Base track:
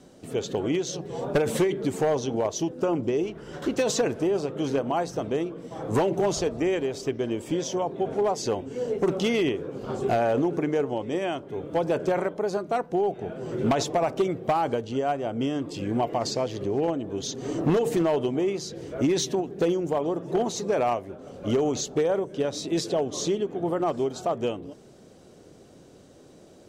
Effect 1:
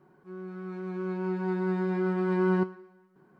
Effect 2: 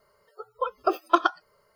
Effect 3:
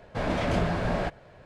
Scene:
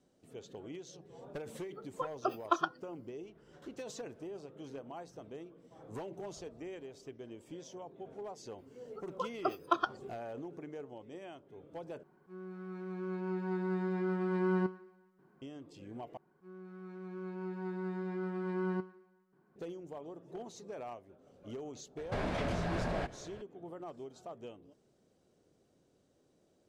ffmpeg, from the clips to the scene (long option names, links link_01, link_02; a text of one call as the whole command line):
ffmpeg -i bed.wav -i cue0.wav -i cue1.wav -i cue2.wav -filter_complex "[2:a]asplit=2[link_01][link_02];[1:a]asplit=2[link_03][link_04];[0:a]volume=-20dB[link_05];[link_01]equalizer=frequency=7000:width_type=o:width=0.77:gain=-6[link_06];[3:a]acompressor=threshold=-30dB:ratio=6:attack=3.2:release=140:knee=1:detection=peak[link_07];[link_05]asplit=3[link_08][link_09][link_10];[link_08]atrim=end=12.034[link_11];[link_03]atrim=end=3.39,asetpts=PTS-STARTPTS,volume=-6dB[link_12];[link_09]atrim=start=15.416:end=16.174[link_13];[link_04]atrim=end=3.39,asetpts=PTS-STARTPTS,volume=-10dB[link_14];[link_10]atrim=start=19.556[link_15];[link_06]atrim=end=1.75,asetpts=PTS-STARTPTS,volume=-10dB,afade=type=in:duration=0.004:curve=hsin,afade=type=out:start_time=1.746:duration=0.004:curve=hsin,adelay=1380[link_16];[link_02]atrim=end=1.75,asetpts=PTS-STARTPTS,volume=-10dB,afade=type=in:duration=0.004:curve=hsin,afade=type=out:start_time=1.746:duration=0.004:curve=hsin,adelay=378378S[link_17];[link_07]atrim=end=1.45,asetpts=PTS-STARTPTS,volume=-1dB,afade=type=in:duration=0.004:curve=hsin,afade=type=out:start_time=1.446:duration=0.004:curve=hsin,adelay=21970[link_18];[link_11][link_12]acrossfade=duration=0.004:curve1=hsin:curve2=hsin[link_19];[link_19][link_13]acrossfade=duration=0.004:curve1=hsin:curve2=hsin[link_20];[link_20][link_14]acrossfade=duration=0.004:curve1=hsin:curve2=hsin[link_21];[link_21][link_15]acrossfade=duration=0.004:curve1=hsin:curve2=hsin[link_22];[link_22][link_16][link_17][link_18]amix=inputs=4:normalize=0" out.wav